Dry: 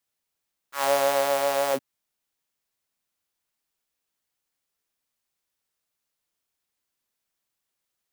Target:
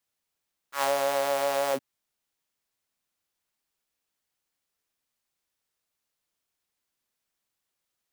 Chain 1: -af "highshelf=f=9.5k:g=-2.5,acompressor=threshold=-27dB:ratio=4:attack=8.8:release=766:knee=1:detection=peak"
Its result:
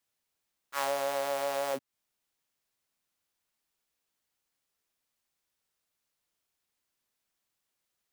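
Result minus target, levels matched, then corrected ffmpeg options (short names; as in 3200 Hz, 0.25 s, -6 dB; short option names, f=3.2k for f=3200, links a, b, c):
compressor: peak gain reduction +5.5 dB
-af "highshelf=f=9.5k:g=-2.5,acompressor=threshold=-20dB:ratio=4:attack=8.8:release=766:knee=1:detection=peak"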